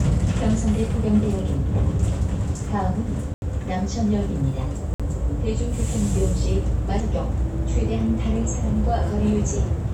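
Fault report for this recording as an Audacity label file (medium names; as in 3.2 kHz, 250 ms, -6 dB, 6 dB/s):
3.340000	3.420000	dropout 81 ms
4.940000	5.000000	dropout 56 ms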